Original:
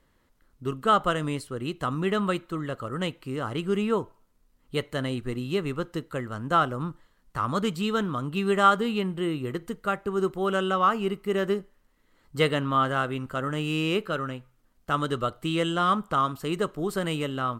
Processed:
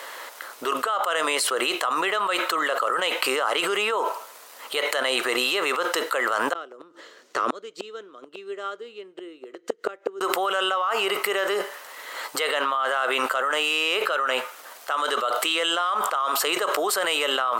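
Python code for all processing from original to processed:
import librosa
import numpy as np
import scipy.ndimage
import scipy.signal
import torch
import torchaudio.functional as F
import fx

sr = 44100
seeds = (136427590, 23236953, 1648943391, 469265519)

y = fx.chain(x, sr, fx.curve_eq(hz=(160.0, 380.0, 860.0, 1400.0, 6600.0, 11000.0), db=(0, 4, -20, -14, -10, -26)),
    fx.gate_flip(shuts_db=-23.0, range_db=-33), at=(6.53, 10.21))
y = scipy.signal.sosfilt(scipy.signal.butter(4, 560.0, 'highpass', fs=sr, output='sos'), y)
y = fx.env_flatten(y, sr, amount_pct=100)
y = y * 10.0 ** (-6.0 / 20.0)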